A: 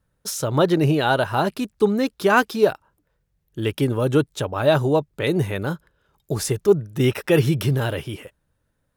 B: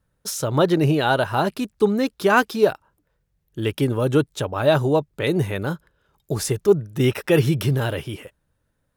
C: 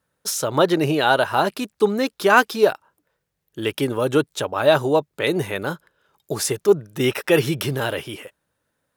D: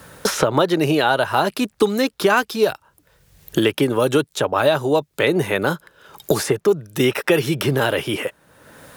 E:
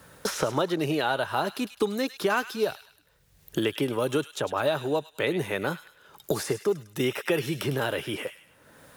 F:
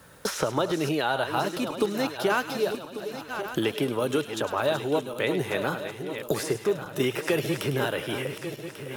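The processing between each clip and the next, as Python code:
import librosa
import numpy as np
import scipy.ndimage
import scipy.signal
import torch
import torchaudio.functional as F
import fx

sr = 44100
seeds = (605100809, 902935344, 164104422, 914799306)

y1 = x
y2 = fx.highpass(y1, sr, hz=400.0, slope=6)
y2 = y2 * librosa.db_to_amplitude(3.5)
y3 = fx.band_squash(y2, sr, depth_pct=100)
y3 = y3 * librosa.db_to_amplitude(1.0)
y4 = fx.echo_wet_highpass(y3, sr, ms=103, feedback_pct=39, hz=2000.0, wet_db=-9.5)
y4 = y4 * librosa.db_to_amplitude(-9.0)
y5 = fx.reverse_delay_fb(y4, sr, ms=571, feedback_pct=66, wet_db=-9.0)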